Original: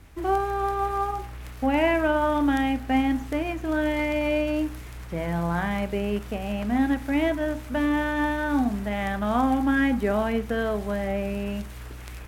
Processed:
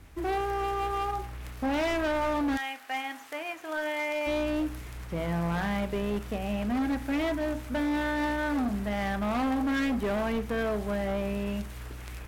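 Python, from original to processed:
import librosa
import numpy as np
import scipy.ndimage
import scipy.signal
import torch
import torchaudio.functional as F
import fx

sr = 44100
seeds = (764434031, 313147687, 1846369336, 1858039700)

y = fx.highpass(x, sr, hz=fx.line((2.56, 1100.0), (4.26, 520.0)), slope=12, at=(2.56, 4.26), fade=0.02)
y = np.clip(y, -10.0 ** (-24.0 / 20.0), 10.0 ** (-24.0 / 20.0))
y = y * librosa.db_to_amplitude(-1.5)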